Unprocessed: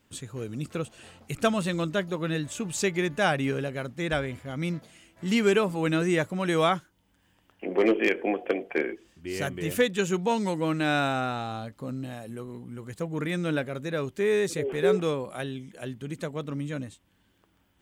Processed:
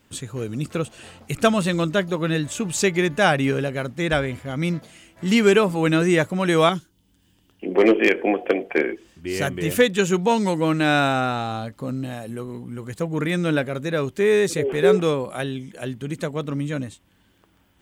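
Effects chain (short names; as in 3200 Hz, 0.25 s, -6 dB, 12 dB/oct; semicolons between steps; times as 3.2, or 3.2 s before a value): 6.69–7.75 band shelf 1100 Hz -10 dB 2.5 oct; gain +6.5 dB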